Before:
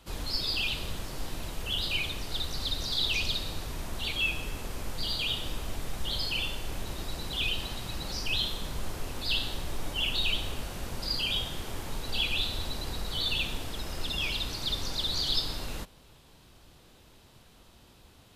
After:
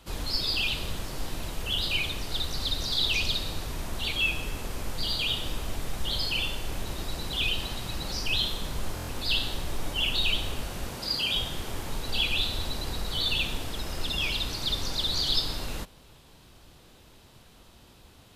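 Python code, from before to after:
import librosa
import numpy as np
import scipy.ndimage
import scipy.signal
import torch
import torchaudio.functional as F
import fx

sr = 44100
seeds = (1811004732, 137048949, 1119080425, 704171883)

y = fx.highpass(x, sr, hz=130.0, slope=6, at=(10.91, 11.36))
y = fx.buffer_glitch(y, sr, at_s=(8.95,), block=1024, repeats=5)
y = F.gain(torch.from_numpy(y), 2.5).numpy()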